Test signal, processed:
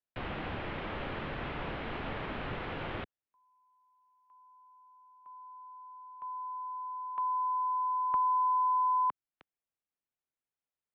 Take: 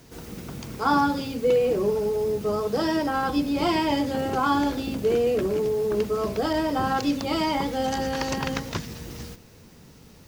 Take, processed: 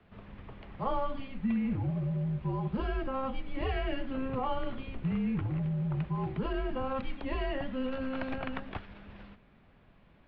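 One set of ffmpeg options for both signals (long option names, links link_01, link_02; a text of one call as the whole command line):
ffmpeg -i in.wav -filter_complex "[0:a]highpass=frequency=260:width_type=q:width=0.5412,highpass=frequency=260:width_type=q:width=1.307,lowpass=frequency=3500:width_type=q:width=0.5176,lowpass=frequency=3500:width_type=q:width=0.7071,lowpass=frequency=3500:width_type=q:width=1.932,afreqshift=-270,acrossover=split=380|870[link_01][link_02][link_03];[link_01]acompressor=threshold=-25dB:ratio=4[link_04];[link_02]acompressor=threshold=-37dB:ratio=4[link_05];[link_03]acompressor=threshold=-25dB:ratio=4[link_06];[link_04][link_05][link_06]amix=inputs=3:normalize=0,highshelf=frequency=2400:gain=-8,volume=-4.5dB" out.wav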